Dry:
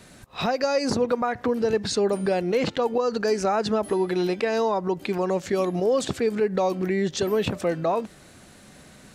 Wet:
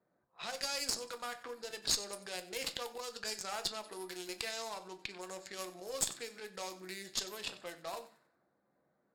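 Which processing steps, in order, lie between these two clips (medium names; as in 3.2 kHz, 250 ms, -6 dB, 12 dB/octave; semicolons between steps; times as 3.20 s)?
local Wiener filter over 15 samples; treble shelf 2.9 kHz +8.5 dB; band-stop 6 kHz, Q 8.2; simulated room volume 140 m³, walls furnished, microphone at 0.74 m; level-controlled noise filter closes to 620 Hz, open at -18 dBFS; differentiator; thinning echo 93 ms, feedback 34%, level -16 dB; Chebyshev shaper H 4 -20 dB, 8 -30 dB, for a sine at -14.5 dBFS; trim -1 dB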